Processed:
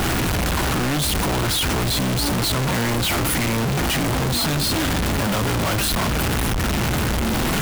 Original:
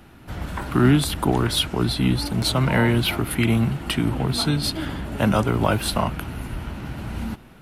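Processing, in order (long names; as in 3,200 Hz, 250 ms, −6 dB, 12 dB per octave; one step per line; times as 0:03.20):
sign of each sample alone
level +1.5 dB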